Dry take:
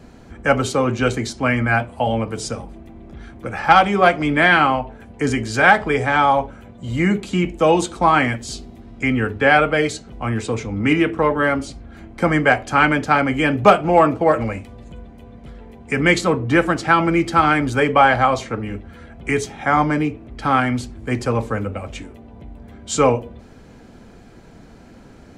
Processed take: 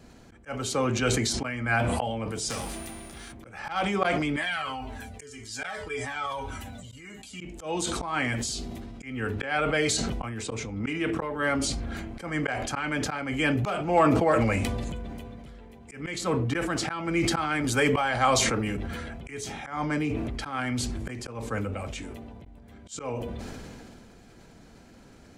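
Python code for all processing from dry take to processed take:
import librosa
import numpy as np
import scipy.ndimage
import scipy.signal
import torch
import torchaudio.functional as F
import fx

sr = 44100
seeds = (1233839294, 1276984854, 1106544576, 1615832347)

y = fx.envelope_flatten(x, sr, power=0.6, at=(2.49, 3.31), fade=0.02)
y = fx.dmg_tone(y, sr, hz=9500.0, level_db=-51.0, at=(2.49, 3.31), fade=0.02)
y = fx.clip_hard(y, sr, threshold_db=-24.0, at=(2.49, 3.31), fade=0.02)
y = fx.chain(y, sr, fx.high_shelf(hz=3100.0, db=9.5),
    fx.comb_fb(f0_hz=87.0, decay_s=0.22, harmonics='odd', damping=0.0, mix_pct=80),
    fx.comb_cascade(direction='falling', hz=1.8), at=(4.36, 7.41))
y = fx.chain(y, sr, fx.high_shelf(hz=5800.0, db=8.5),
    fx.band_squash(depth_pct=40), at=(17.64, 18.77))
y = fx.high_shelf(y, sr, hz=2700.0, db=7.5)
y = fx.auto_swell(y, sr, attack_ms=274.0)
y = fx.sustainer(y, sr, db_per_s=21.0)
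y = y * librosa.db_to_amplitude(-9.0)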